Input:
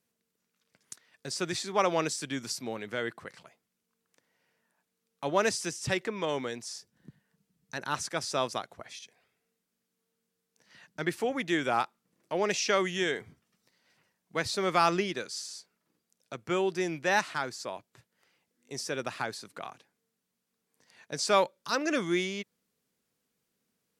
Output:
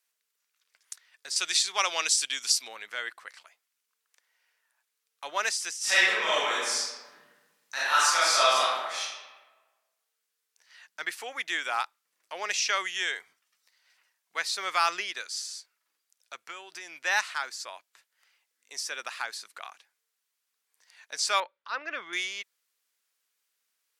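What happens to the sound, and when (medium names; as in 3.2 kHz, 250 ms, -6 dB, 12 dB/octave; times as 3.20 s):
1.36–2.68 s: high-order bell 5.3 kHz +8 dB 2.4 oct
5.77–9.02 s: reverb throw, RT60 1.3 s, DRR -10.5 dB
16.40–16.96 s: compression, threshold -33 dBFS
21.40–22.13 s: distance through air 380 m
whole clip: high-pass 1.2 kHz 12 dB/octave; trim +3.5 dB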